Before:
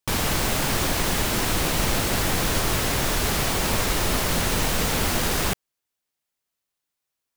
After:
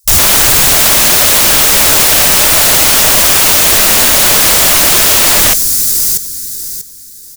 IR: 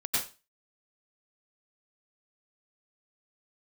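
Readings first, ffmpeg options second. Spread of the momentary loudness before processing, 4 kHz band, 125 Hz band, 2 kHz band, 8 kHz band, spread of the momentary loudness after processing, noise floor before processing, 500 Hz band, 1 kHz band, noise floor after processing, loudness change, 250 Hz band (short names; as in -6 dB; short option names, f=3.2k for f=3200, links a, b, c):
0 LU, +17.0 dB, +4.0 dB, +14.5 dB, +20.5 dB, 7 LU, -84 dBFS, +10.5 dB, +12.0 dB, -32 dBFS, +18.0 dB, +6.0 dB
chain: -filter_complex "[0:a]highshelf=f=2.7k:g=-8,asplit=2[a][b];[b]aeval=exprs='(mod(21.1*val(0)+1,2)-1)/21.1':c=same,volume=-5dB[c];[a][c]amix=inputs=2:normalize=0,asuperstop=centerf=790:order=12:qfactor=0.82,aecho=1:1:640|1280|1920:0.316|0.0822|0.0214,aexciter=amount=13.1:drive=8.4:freq=4.4k,afwtdn=0.251,aeval=exprs='2.11*sin(PI/2*7.94*val(0)/2.11)':c=same,equalizer=f=610:t=o:w=0.34:g=11.5,acontrast=22,volume=-3.5dB"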